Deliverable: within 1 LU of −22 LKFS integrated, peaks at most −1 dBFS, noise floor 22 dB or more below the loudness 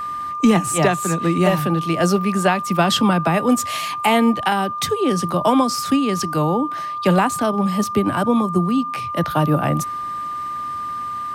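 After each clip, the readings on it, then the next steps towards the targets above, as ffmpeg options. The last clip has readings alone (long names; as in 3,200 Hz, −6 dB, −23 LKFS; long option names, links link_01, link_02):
interfering tone 1,200 Hz; level of the tone −24 dBFS; integrated loudness −19.0 LKFS; sample peak −5.0 dBFS; target loudness −22.0 LKFS
→ -af "bandreject=frequency=1200:width=30"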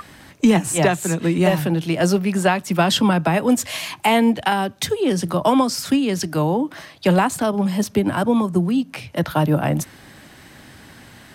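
interfering tone none found; integrated loudness −19.5 LKFS; sample peak −6.0 dBFS; target loudness −22.0 LKFS
→ -af "volume=-2.5dB"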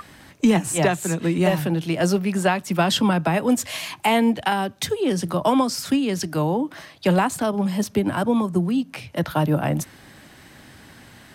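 integrated loudness −22.0 LKFS; sample peak −8.5 dBFS; background noise floor −48 dBFS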